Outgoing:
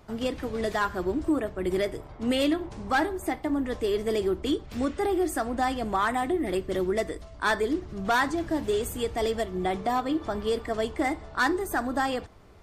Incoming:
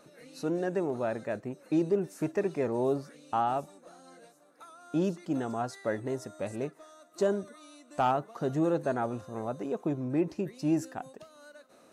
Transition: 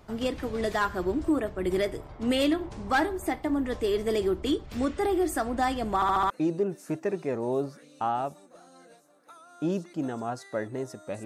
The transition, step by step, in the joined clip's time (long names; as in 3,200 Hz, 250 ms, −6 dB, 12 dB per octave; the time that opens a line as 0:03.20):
outgoing
0:05.95: stutter in place 0.07 s, 5 plays
0:06.30: continue with incoming from 0:01.62